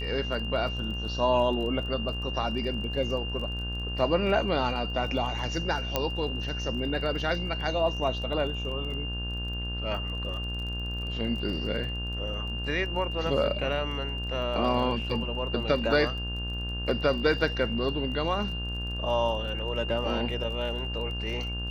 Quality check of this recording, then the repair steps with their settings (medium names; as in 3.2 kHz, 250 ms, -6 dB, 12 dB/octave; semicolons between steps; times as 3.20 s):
buzz 60 Hz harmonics 29 -34 dBFS
crackle 24 per s -37 dBFS
whine 2.8 kHz -35 dBFS
5.96 s: pop -10 dBFS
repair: de-click; band-stop 2.8 kHz, Q 30; de-hum 60 Hz, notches 29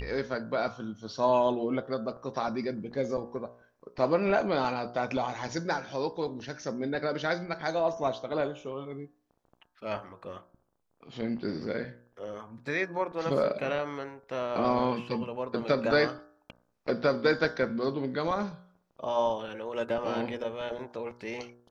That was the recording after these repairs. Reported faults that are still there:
nothing left